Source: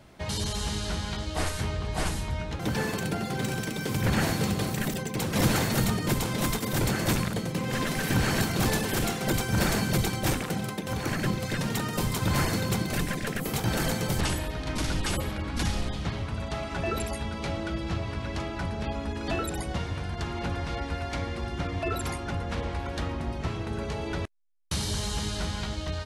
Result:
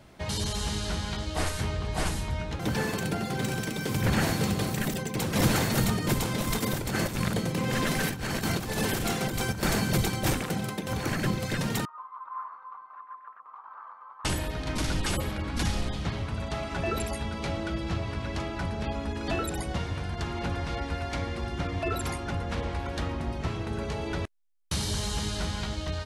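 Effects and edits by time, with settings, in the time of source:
6.4–9.63 negative-ratio compressor -28 dBFS, ratio -0.5
11.85–14.25 Butterworth band-pass 1100 Hz, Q 4.5

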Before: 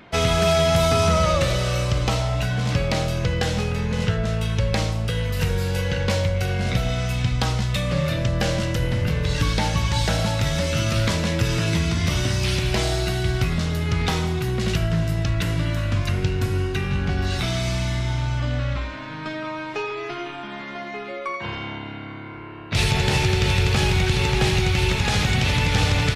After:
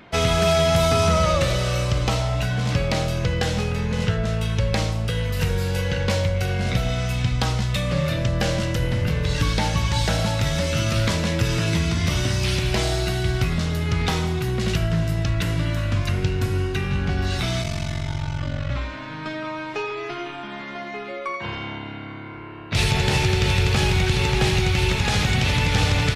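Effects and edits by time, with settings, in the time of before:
17.62–18.7 ring modulator 23 Hz
21.53–24.91 short-mantissa float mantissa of 8-bit

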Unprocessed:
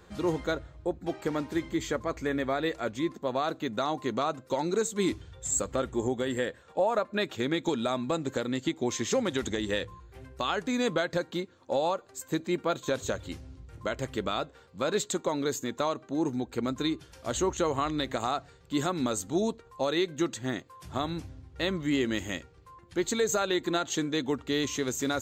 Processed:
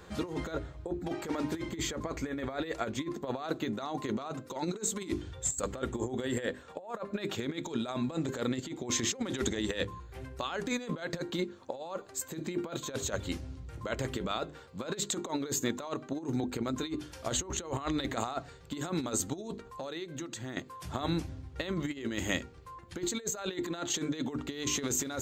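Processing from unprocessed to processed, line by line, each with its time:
19.66–20.57 compressor 8:1, threshold -40 dBFS
whole clip: notches 50/100/150/200/250/300/350/400 Hz; negative-ratio compressor -33 dBFS, ratio -0.5

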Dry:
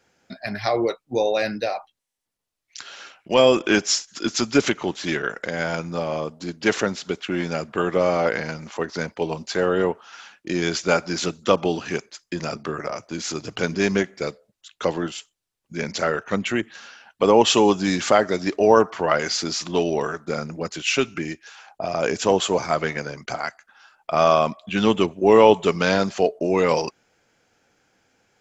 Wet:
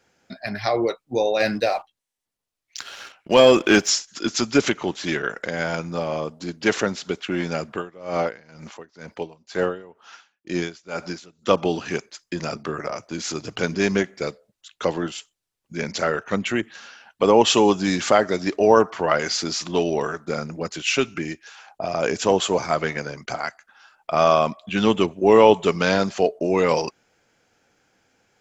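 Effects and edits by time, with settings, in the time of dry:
1.4–3.9 sample leveller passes 1
7.72–11.51 dB-linear tremolo 2.1 Hz, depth 24 dB

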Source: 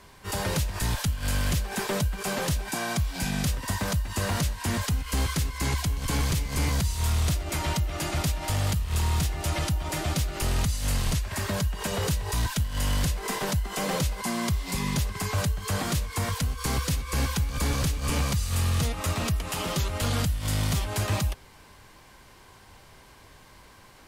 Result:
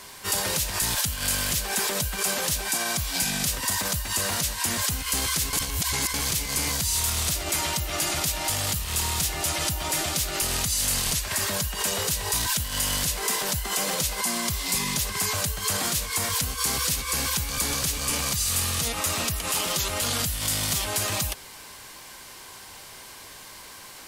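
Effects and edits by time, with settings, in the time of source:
5.53–6.14 reverse
whole clip: low shelf 160 Hz -11 dB; limiter -27.5 dBFS; high shelf 3400 Hz +11.5 dB; gain +5.5 dB

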